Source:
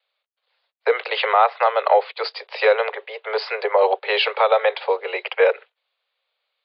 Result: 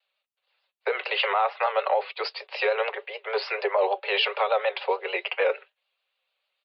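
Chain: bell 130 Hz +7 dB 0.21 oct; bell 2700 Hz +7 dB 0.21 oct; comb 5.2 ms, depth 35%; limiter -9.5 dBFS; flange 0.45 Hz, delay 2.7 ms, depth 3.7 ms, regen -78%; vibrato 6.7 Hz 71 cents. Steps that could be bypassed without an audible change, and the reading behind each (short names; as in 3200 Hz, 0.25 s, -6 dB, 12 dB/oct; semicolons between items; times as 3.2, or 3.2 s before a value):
bell 130 Hz: input band starts at 360 Hz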